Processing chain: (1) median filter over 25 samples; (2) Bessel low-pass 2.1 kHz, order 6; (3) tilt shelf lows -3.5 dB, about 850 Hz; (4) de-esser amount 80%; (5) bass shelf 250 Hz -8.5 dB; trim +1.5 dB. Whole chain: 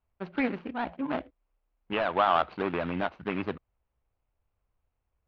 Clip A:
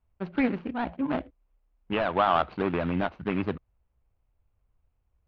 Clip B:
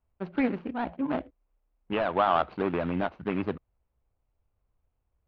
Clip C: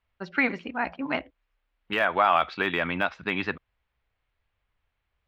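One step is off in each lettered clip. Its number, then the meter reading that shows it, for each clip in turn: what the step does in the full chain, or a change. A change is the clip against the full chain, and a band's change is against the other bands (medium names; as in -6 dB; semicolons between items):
5, 125 Hz band +5.5 dB; 3, 4 kHz band -4.5 dB; 1, 2 kHz band +8.5 dB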